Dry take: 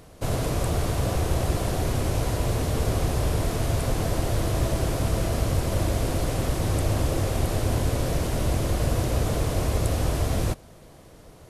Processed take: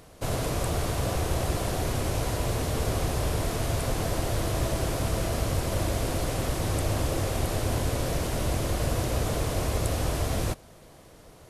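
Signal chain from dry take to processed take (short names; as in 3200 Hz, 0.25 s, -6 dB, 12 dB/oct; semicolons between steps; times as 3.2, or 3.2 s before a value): low shelf 450 Hz -4 dB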